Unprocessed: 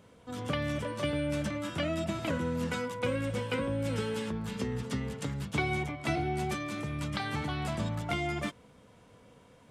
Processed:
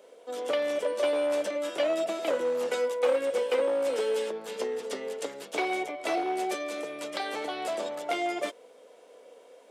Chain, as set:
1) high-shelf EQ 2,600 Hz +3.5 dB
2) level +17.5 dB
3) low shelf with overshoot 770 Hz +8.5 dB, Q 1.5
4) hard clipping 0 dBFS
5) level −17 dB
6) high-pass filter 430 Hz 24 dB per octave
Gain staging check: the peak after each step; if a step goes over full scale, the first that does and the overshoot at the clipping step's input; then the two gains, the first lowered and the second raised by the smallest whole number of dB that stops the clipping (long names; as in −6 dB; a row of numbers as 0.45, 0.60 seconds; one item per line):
−16.0, +1.5, +7.0, 0.0, −17.0, −15.5 dBFS
step 2, 7.0 dB
step 2 +10.5 dB, step 5 −10 dB